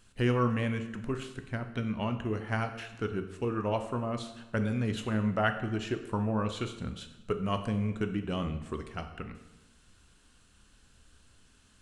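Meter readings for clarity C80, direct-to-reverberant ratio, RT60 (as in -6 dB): 12.0 dB, 7.0 dB, 1.0 s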